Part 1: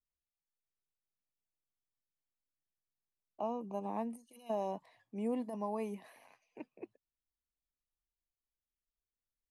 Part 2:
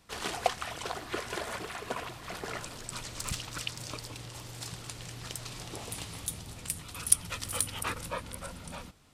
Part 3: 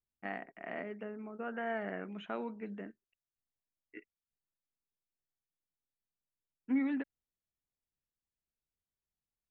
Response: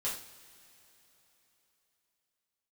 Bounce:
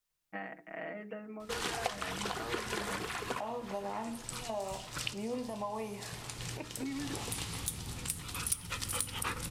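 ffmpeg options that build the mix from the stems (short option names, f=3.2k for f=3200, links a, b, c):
-filter_complex "[0:a]lowshelf=f=400:g=-9.5,acontrast=78,volume=2.5dB,asplit=3[a][b][c];[b]volume=-13dB[d];[1:a]equalizer=f=620:w=4.7:g=-8.5,asoftclip=type=hard:threshold=-15.5dB,adelay=1400,volume=2.5dB,asplit=2[e][f];[f]volume=-16.5dB[g];[2:a]aecho=1:1:6.3:0.88,adelay=100,volume=0dB,asplit=2[h][i];[i]volume=-23dB[j];[c]apad=whole_len=464582[k];[e][k]sidechaincompress=threshold=-55dB:ratio=4:attack=8.1:release=165[l];[a][h]amix=inputs=2:normalize=0,bandreject=f=60:t=h:w=6,bandreject=f=120:t=h:w=6,bandreject=f=180:t=h:w=6,bandreject=f=240:t=h:w=6,bandreject=f=300:t=h:w=6,bandreject=f=360:t=h:w=6,bandreject=f=420:t=h:w=6,acompressor=threshold=-37dB:ratio=6,volume=0dB[m];[3:a]atrim=start_sample=2205[n];[d][g][j]amix=inputs=3:normalize=0[o];[o][n]afir=irnorm=-1:irlink=0[p];[l][m][p]amix=inputs=3:normalize=0,acompressor=threshold=-34dB:ratio=2.5"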